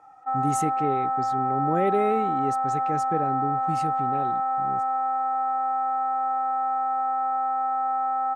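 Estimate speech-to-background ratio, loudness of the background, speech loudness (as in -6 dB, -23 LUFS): -4.5 dB, -25.5 LUFS, -30.0 LUFS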